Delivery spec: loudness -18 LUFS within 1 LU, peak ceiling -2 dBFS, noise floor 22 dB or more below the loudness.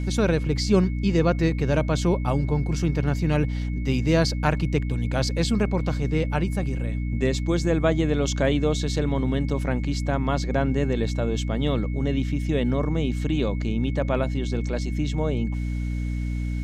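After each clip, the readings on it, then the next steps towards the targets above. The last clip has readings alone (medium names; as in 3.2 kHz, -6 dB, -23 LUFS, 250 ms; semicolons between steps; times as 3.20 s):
hum 60 Hz; highest harmonic 300 Hz; hum level -24 dBFS; steady tone 2.2 kHz; tone level -45 dBFS; loudness -24.5 LUFS; peak level -6.0 dBFS; loudness target -18.0 LUFS
-> de-hum 60 Hz, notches 5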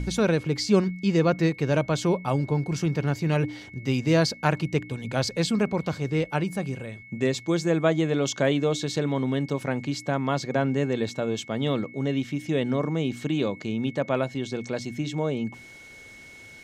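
hum not found; steady tone 2.2 kHz; tone level -45 dBFS
-> band-stop 2.2 kHz, Q 30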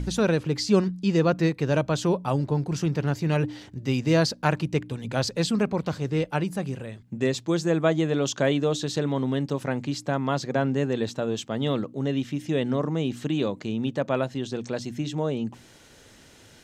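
steady tone not found; loudness -26.0 LUFS; peak level -7.0 dBFS; loudness target -18.0 LUFS
-> trim +8 dB; peak limiter -2 dBFS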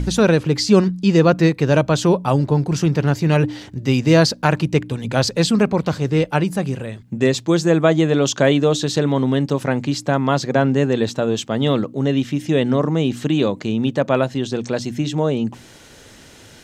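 loudness -18.5 LUFS; peak level -2.0 dBFS; noise floor -44 dBFS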